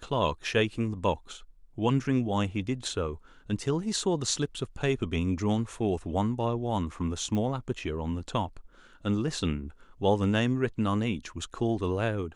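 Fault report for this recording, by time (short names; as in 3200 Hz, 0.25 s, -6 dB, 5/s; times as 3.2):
7.35 pop -21 dBFS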